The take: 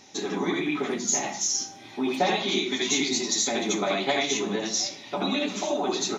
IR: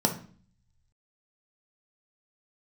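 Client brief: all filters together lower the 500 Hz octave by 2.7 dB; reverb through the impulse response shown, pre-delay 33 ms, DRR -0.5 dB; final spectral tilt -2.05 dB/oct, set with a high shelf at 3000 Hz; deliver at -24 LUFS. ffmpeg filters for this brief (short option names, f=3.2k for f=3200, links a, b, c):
-filter_complex "[0:a]equalizer=f=500:t=o:g=-4,highshelf=f=3k:g=9,asplit=2[a][b];[1:a]atrim=start_sample=2205,adelay=33[c];[b][c]afir=irnorm=-1:irlink=0,volume=-10dB[d];[a][d]amix=inputs=2:normalize=0,volume=-6dB"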